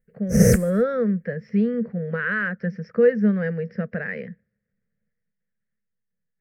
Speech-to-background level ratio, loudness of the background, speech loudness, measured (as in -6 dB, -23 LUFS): -5.0 dB, -19.0 LUFS, -24.0 LUFS